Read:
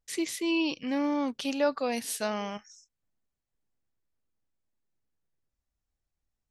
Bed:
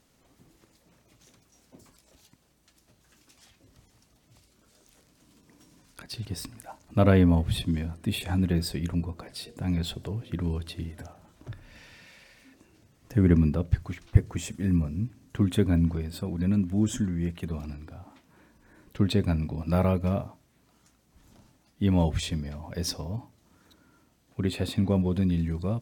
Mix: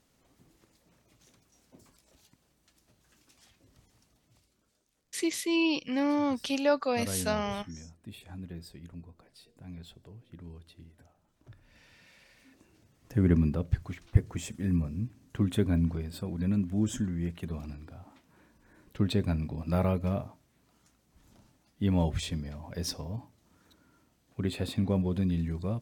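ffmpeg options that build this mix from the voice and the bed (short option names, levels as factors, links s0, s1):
-filter_complex "[0:a]adelay=5050,volume=1.12[s0];[1:a]volume=2.99,afade=t=out:st=4.02:d=0.85:silence=0.223872,afade=t=in:st=11.26:d=1.32:silence=0.211349[s1];[s0][s1]amix=inputs=2:normalize=0"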